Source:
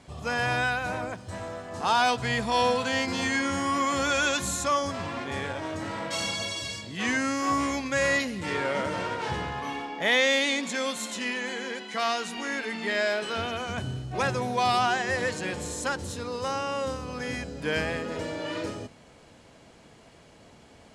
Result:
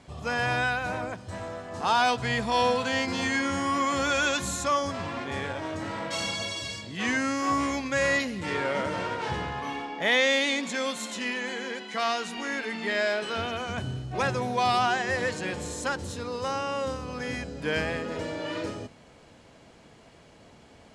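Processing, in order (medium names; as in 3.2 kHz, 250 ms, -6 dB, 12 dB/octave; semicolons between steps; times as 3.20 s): treble shelf 10 kHz -7 dB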